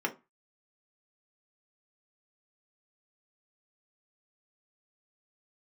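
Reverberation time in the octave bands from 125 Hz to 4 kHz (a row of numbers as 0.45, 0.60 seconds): 0.30, 0.30, 0.20, 0.30, 0.25, 0.15 seconds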